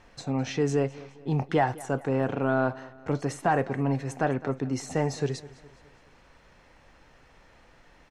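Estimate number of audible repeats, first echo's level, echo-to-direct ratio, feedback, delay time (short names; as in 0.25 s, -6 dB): 3, -20.0 dB, -19.0 dB, 48%, 0.208 s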